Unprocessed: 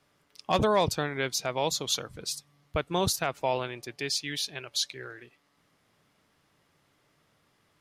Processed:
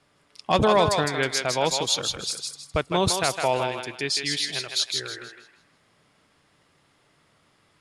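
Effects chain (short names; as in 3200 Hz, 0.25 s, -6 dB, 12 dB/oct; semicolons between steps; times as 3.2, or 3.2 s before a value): steep low-pass 11000 Hz 48 dB/oct; notch 6000 Hz, Q 15; thinning echo 0.159 s, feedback 33%, high-pass 610 Hz, level -3.5 dB; gain +4.5 dB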